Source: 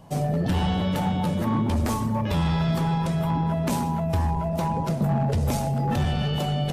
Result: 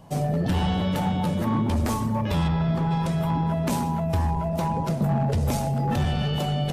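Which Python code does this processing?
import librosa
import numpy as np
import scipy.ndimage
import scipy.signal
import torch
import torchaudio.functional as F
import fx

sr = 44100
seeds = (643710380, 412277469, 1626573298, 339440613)

y = fx.lowpass(x, sr, hz=1600.0, slope=6, at=(2.47, 2.9), fade=0.02)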